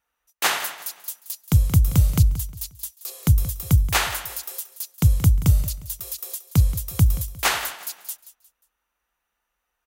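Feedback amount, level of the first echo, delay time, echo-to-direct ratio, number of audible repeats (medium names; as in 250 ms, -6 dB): 33%, -14.5 dB, 178 ms, -14.0 dB, 3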